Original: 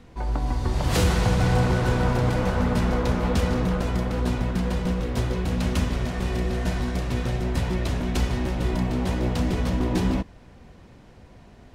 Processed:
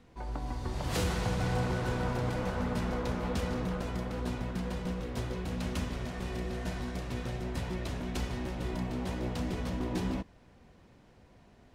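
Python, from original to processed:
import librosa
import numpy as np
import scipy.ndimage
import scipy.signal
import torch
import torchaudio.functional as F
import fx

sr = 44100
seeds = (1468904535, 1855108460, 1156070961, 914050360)

y = fx.low_shelf(x, sr, hz=110.0, db=-4.5)
y = y * 10.0 ** (-8.5 / 20.0)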